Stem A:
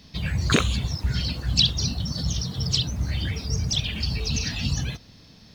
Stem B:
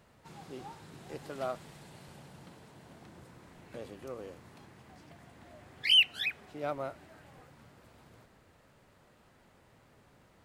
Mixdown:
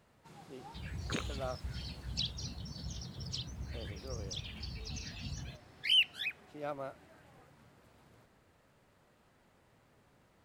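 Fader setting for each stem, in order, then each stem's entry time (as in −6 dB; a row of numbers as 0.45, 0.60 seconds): −17.0, −4.5 decibels; 0.60, 0.00 seconds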